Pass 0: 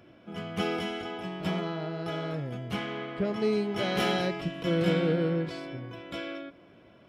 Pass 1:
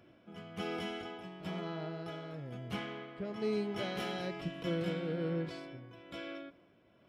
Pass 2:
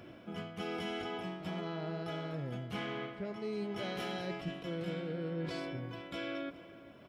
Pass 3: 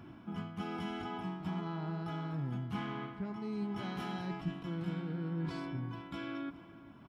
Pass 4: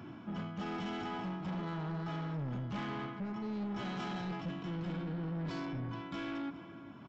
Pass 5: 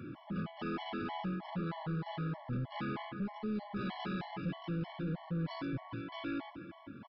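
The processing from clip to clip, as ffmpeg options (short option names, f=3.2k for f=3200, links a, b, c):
-af "tremolo=f=1.1:d=0.47,volume=-6dB"
-filter_complex "[0:a]areverse,acompressor=threshold=-46dB:ratio=6,areverse,asplit=2[a][b];[b]adelay=419.8,volume=-16dB,highshelf=f=4k:g=-9.45[c];[a][c]amix=inputs=2:normalize=0,volume=9.5dB"
-af "firequalizer=gain_entry='entry(260,0);entry(540,-17);entry(860,1);entry(2000,-9)':delay=0.05:min_phase=1,volume=3.5dB"
-af "highpass=98,aresample=16000,asoftclip=type=tanh:threshold=-39dB,aresample=44100,volume=4.5dB"
-af "aresample=11025,aresample=44100,afftfilt=real='re*gt(sin(2*PI*3.2*pts/sr)*(1-2*mod(floor(b*sr/1024/570),2)),0)':imag='im*gt(sin(2*PI*3.2*pts/sr)*(1-2*mod(floor(b*sr/1024/570),2)),0)':win_size=1024:overlap=0.75,volume=3dB"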